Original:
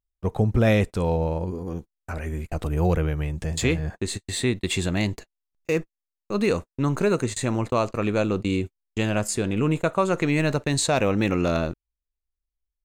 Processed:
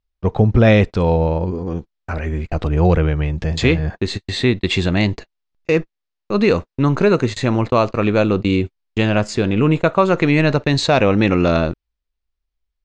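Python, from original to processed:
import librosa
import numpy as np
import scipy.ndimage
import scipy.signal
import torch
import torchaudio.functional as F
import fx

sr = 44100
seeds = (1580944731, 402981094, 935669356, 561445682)

y = scipy.signal.sosfilt(scipy.signal.butter(4, 5200.0, 'lowpass', fs=sr, output='sos'), x)
y = y * 10.0 ** (7.5 / 20.0)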